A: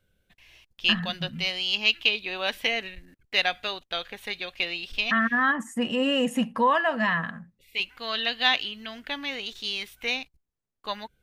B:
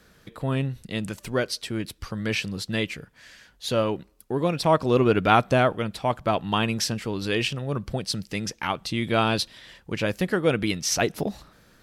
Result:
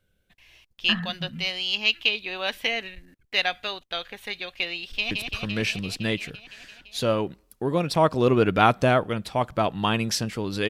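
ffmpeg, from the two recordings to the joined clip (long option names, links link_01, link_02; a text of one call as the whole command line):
ffmpeg -i cue0.wav -i cue1.wav -filter_complex "[0:a]apad=whole_dur=10.69,atrim=end=10.69,atrim=end=5.112[link_01];[1:a]atrim=start=1.798:end=7.38[link_02];[link_01][link_02]acrossfade=duration=0.004:curve1=hsin:curve2=hsin,asplit=2[link_03][link_04];[link_04]afade=type=in:start_time=4.83:duration=0.01,afade=type=out:start_time=5.11:duration=0.01,aecho=0:1:170|340|510|680|850|1020|1190|1360|1530|1700|1870|2040:0.595662|0.47653|0.381224|0.304979|0.243983|0.195187|0.156149|0.124919|0.0999355|0.0799484|0.0639587|0.051167[link_05];[link_03][link_05]amix=inputs=2:normalize=0" out.wav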